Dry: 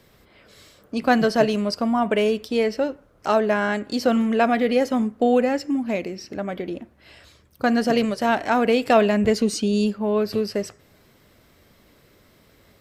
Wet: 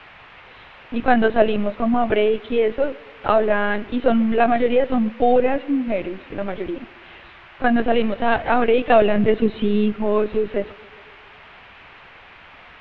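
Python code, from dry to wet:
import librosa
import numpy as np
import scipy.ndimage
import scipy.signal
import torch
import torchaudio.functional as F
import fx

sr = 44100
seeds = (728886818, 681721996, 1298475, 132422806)

y = fx.lpc_vocoder(x, sr, seeds[0], excitation='pitch_kept', order=16)
y = fx.echo_banded(y, sr, ms=137, feedback_pct=72, hz=360.0, wet_db=-23.0)
y = fx.dmg_noise_band(y, sr, seeds[1], low_hz=620.0, high_hz=2800.0, level_db=-48.0)
y = F.gain(torch.from_numpy(y), 2.5).numpy()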